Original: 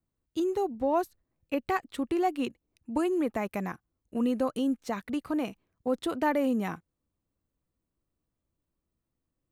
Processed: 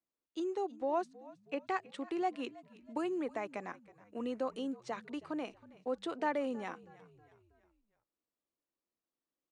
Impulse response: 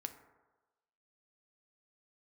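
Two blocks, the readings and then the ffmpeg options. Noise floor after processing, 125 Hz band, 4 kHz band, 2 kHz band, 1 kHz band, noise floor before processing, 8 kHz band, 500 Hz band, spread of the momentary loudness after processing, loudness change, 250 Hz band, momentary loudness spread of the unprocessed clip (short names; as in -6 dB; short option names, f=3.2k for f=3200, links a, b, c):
under -85 dBFS, -15.0 dB, -6.0 dB, -6.0 dB, -6.0 dB, -85 dBFS, -10.0 dB, -7.0 dB, 13 LU, -8.0 dB, -10.0 dB, 10 LU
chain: -filter_complex "[0:a]acrossover=split=260 8000:gain=0.0708 1 0.141[a][b][c];[a][b][c]amix=inputs=3:normalize=0,asplit=5[d][e][f][g][h];[e]adelay=320,afreqshift=-54,volume=-20dB[i];[f]adelay=640,afreqshift=-108,volume=-26.6dB[j];[g]adelay=960,afreqshift=-162,volume=-33.1dB[k];[h]adelay=1280,afreqshift=-216,volume=-39.7dB[l];[d][i][j][k][l]amix=inputs=5:normalize=0,aresample=22050,aresample=44100,volume=-6dB"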